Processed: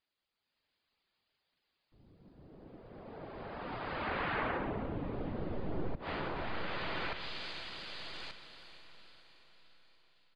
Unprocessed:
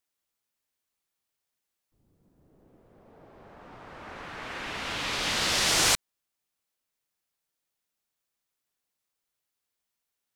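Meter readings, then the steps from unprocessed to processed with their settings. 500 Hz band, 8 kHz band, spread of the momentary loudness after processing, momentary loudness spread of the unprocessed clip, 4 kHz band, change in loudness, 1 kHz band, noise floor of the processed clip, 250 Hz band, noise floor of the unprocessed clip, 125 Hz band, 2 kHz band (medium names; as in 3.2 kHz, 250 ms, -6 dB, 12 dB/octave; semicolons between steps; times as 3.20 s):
0.0 dB, under -35 dB, 19 LU, 21 LU, -15.0 dB, -14.0 dB, -3.0 dB, under -85 dBFS, +2.0 dB, -85 dBFS, +2.0 dB, -7.5 dB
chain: tracing distortion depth 0.083 ms; brick-wall FIR low-pass 5 kHz; bass shelf 480 Hz -3 dB; saturation -18 dBFS, distortion -19 dB; peaking EQ 1.2 kHz -2.5 dB 2.2 oct; reverb removal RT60 0.56 s; echo that smears into a reverb 466 ms, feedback 52%, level -13 dB; level rider gain up to 7 dB; feedback delay 1180 ms, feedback 25%, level -16.5 dB; compression 12:1, threshold -27 dBFS, peak gain reduction 9 dB; low-pass that closes with the level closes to 410 Hz, closed at -28.5 dBFS; trim +3.5 dB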